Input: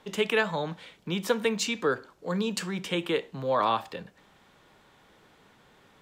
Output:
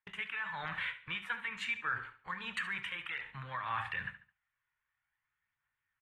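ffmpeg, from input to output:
-filter_complex "[0:a]areverse,acompressor=threshold=0.0126:ratio=12,areverse,agate=range=0.00891:threshold=0.00355:ratio=16:detection=peak,firequalizer=gain_entry='entry(120,0);entry(170,-14);entry(270,-18);entry(480,-20);entry(930,1);entry(1800,15);entry(5100,-19);entry(8600,-10)':delay=0.05:min_phase=1,alimiter=level_in=3.16:limit=0.0631:level=0:latency=1:release=229,volume=0.316,aphaser=in_gain=1:out_gain=1:delay=2.1:decay=0.34:speed=0.53:type=triangular,asplit=2[s0][s1];[s1]aecho=0:1:71|142|213:0.224|0.0761|0.0259[s2];[s0][s2]amix=inputs=2:normalize=0,volume=2.11" -ar 32000 -c:a aac -b:a 32k

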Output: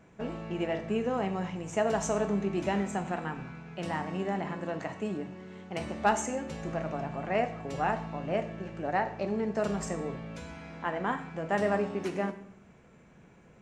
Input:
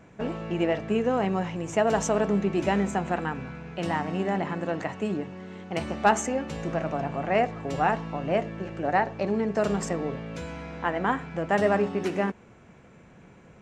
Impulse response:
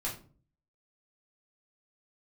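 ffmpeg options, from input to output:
-filter_complex "[0:a]asplit=2[s0][s1];[1:a]atrim=start_sample=2205,asetrate=22491,aresample=44100,highshelf=f=5800:g=11.5[s2];[s1][s2]afir=irnorm=-1:irlink=0,volume=0.168[s3];[s0][s3]amix=inputs=2:normalize=0,volume=0.447"

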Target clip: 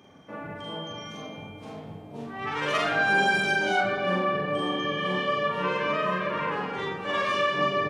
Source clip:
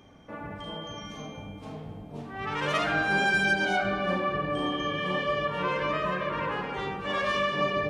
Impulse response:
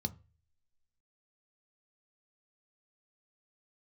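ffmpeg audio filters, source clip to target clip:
-filter_complex "[0:a]highpass=120,asplit=2[s0][s1];[s1]adelay=43,volume=0.708[s2];[s0][s2]amix=inputs=2:normalize=0"

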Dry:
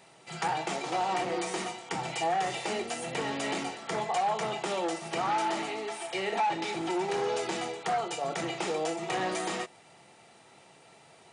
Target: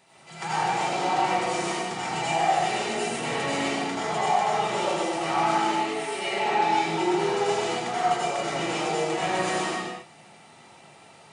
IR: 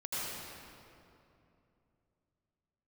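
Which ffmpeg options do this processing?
-filter_complex "[0:a]equalizer=f=480:w=1.5:g=-2.5[s0];[1:a]atrim=start_sample=2205,afade=t=out:st=0.44:d=0.01,atrim=end_sample=19845[s1];[s0][s1]afir=irnorm=-1:irlink=0,volume=1.33"

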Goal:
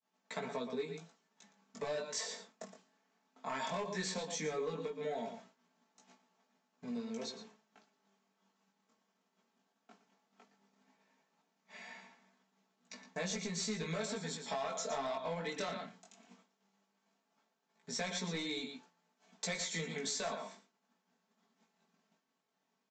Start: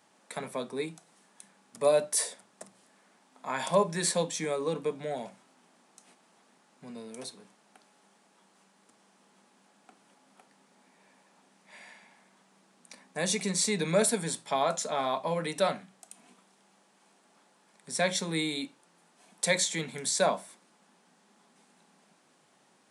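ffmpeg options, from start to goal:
-filter_complex "[0:a]acrossover=split=990[s0][s1];[s0]alimiter=limit=0.0708:level=0:latency=1:release=246[s2];[s2][s1]amix=inputs=2:normalize=0,asplit=2[s3][s4];[s4]adelay=116.6,volume=0.316,highshelf=f=4000:g=-2.62[s5];[s3][s5]amix=inputs=2:normalize=0,aresample=16000,asoftclip=type=hard:threshold=0.0501,aresample=44100,aecho=1:1:4.5:0.55,acompressor=threshold=0.02:ratio=10,flanger=delay=16:depth=6.3:speed=0.16,agate=range=0.0224:threshold=0.00178:ratio=3:detection=peak,volume=1.19"

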